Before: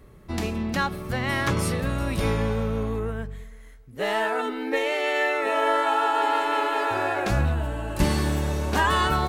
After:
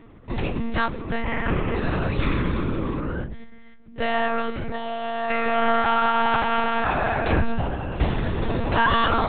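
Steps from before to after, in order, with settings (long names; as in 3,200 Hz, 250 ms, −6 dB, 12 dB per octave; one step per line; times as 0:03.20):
0:01.22–0:01.76: variable-slope delta modulation 16 kbit/s
0:04.71–0:05.30: phaser with its sweep stopped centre 920 Hz, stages 4
0:07.76–0:08.41: tuned comb filter 55 Hz, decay 0.23 s, harmonics all, mix 50%
one-pitch LPC vocoder at 8 kHz 230 Hz
0:02.17–0:03.12: healed spectral selection 360–950 Hz
level +2.5 dB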